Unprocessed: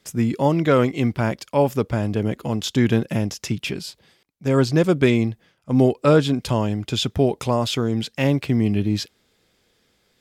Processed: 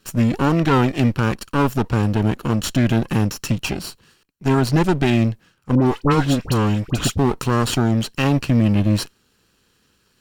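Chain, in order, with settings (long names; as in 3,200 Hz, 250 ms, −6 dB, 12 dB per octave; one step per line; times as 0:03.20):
lower of the sound and its delayed copy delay 0.71 ms
brickwall limiter −12.5 dBFS, peak gain reduction 7 dB
0:05.75–0:07.18: all-pass dispersion highs, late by 69 ms, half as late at 1,400 Hz
level +4 dB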